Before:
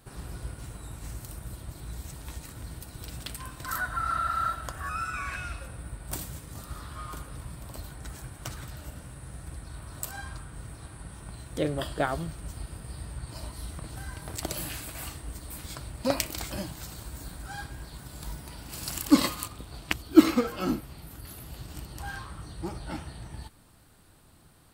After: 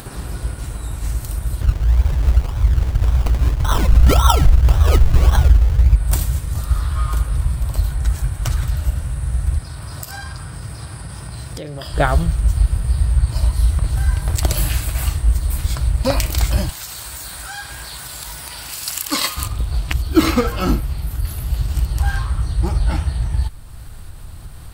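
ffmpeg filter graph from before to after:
-filter_complex "[0:a]asettb=1/sr,asplit=3[a][b][c];[a]atrim=end=1.614[d];[b]atrim=start=1.61:end=5.96,asetpts=PTS-STARTPTS,afade=t=in:d=0.004:c=qsin,afade=t=out:st=4.346:d=0.004:c=qsin,aphaser=in_gain=1:out_gain=1:delay=1.2:decay=0.55:speed=1.6:type=triangular,acrusher=samples=26:mix=1:aa=0.000001:lfo=1:lforange=15.6:lforate=1.8[e];[c]atrim=start=5.956[f];[d][e]acrossfade=d=0.004:c1=hsin:c2=qsin[g];[g][f]acrossfade=d=0.004:c1=qsin:c2=hsin,asettb=1/sr,asplit=3[h][i][j];[h]atrim=end=9.584[k];[i]atrim=start=9.58:end=11.94,asetpts=PTS-STARTPTS,afade=t=in:d=0.004:c=qsin,afade=t=out:st=2.356:d=0.004:c=qsin,equalizer=f=5k:w=7.3:g=12,acompressor=threshold=-37dB:ratio=6:attack=3.2:release=140:knee=1:detection=peak,highpass=130[l];[j]atrim=start=11.936[m];[k][l]acrossfade=d=0.004:c1=hsin:c2=qsin[n];[n][m]acrossfade=d=0.004:c1=qsin:c2=hsin,asettb=1/sr,asplit=3[o][p][q];[o]atrim=end=16.694[r];[p]atrim=start=16.69:end=19.37,asetpts=PTS-STARTPTS,afade=t=in:d=0.004:c=qsin,afade=t=out:st=2.676:d=0.004:c=qsin,highpass=f=1.4k:p=1,acompressor=mode=upward:threshold=-36dB:ratio=2.5:attack=3.2:release=140:knee=2.83:detection=peak[s];[q]atrim=start=19.366[t];[r][s]acrossfade=d=0.004:c1=hsin:c2=qsin[u];[u][t]acrossfade=d=0.004:c1=qsin:c2=hsin,asubboost=boost=7:cutoff=90,acompressor=mode=upward:threshold=-38dB:ratio=2.5,alimiter=level_in=12dB:limit=-1dB:release=50:level=0:latency=1,volume=-1dB"

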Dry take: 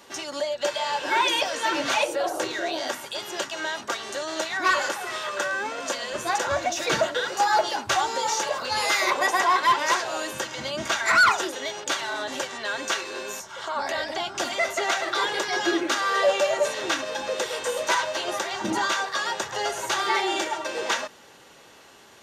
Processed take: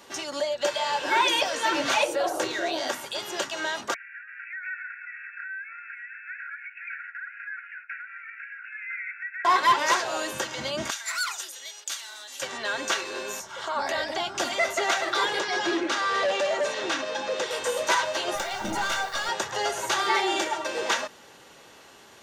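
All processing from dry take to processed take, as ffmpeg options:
-filter_complex "[0:a]asettb=1/sr,asplit=3[a][b][c];[a]atrim=end=3.944[d];[b]atrim=start=3.94:end=9.45,asetpts=PTS-STARTPTS,afade=t=in:d=0.004:c=qsin,afade=t=out:st=5.506:d=0.004:c=qsin,asuperpass=centerf=1900:order=20:qfactor=1.6,acompressor=threshold=-38dB:ratio=2:attack=3.2:release=140:knee=1:detection=peak[e];[c]atrim=start=9.446[f];[d][e]acrossfade=d=0.004:c1=hsin:c2=qsin[g];[g][f]acrossfade=d=0.004:c1=qsin:c2=hsin,asettb=1/sr,asplit=3[h][i][j];[h]atrim=end=10.904[k];[i]atrim=start=10.9:end=12.42,asetpts=PTS-STARTPTS,afade=t=in:d=0.004:c=qsin,afade=t=out:st=1.516:d=0.004:c=qsin,highpass=f=180:w=0.5412,highpass=f=180:w=1.3066,aderivative[l];[j]atrim=start=12.416[m];[k][l]acrossfade=d=0.004:c1=hsin:c2=qsin[n];[n][m]acrossfade=d=0.004:c1=qsin:c2=hsin,asettb=1/sr,asplit=3[o][p][q];[o]atrim=end=15.394[r];[p]atrim=start=15.39:end=17.51,asetpts=PTS-STARTPTS,afade=t=in:d=0.004:c=qsin,afade=t=out:st=2.116:d=0.004:c=qsin,asoftclip=type=hard:threshold=-22dB,highpass=140,lowpass=6.5k[s];[q]atrim=start=17.506[t];[r][s]acrossfade=d=0.004:c1=hsin:c2=qsin[u];[u][t]acrossfade=d=0.004:c1=qsin:c2=hsin,asettb=1/sr,asplit=3[v][w][x];[v]atrim=end=18.354[y];[w]atrim=start=18.35:end=19.29,asetpts=PTS-STARTPTS,afade=t=in:d=0.004:c=qsin,afade=t=out:st=0.936:d=0.004:c=qsin,aeval=exprs='(tanh(12.6*val(0)+0.4)-tanh(0.4))/12.6':c=same,aecho=1:1:1.4:0.39,atrim=end_sample=41454,acrusher=bits=7:mix=0:aa=0.5[z];[x]atrim=start=19.286[aa];[y][z]acrossfade=d=0.004:c1=hsin:c2=qsin[ab];[ab][aa]acrossfade=d=0.004:c1=qsin:c2=hsin"

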